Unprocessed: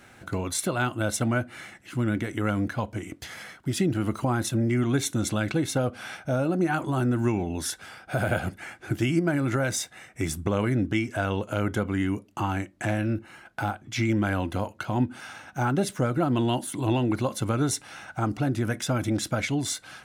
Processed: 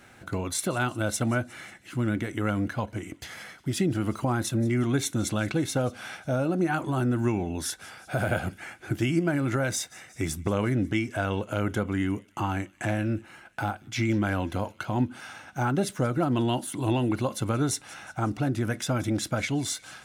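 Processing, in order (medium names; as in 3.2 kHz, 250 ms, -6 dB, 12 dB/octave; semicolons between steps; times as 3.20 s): feedback echo behind a high-pass 180 ms, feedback 60%, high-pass 2.6 kHz, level -20 dB; trim -1 dB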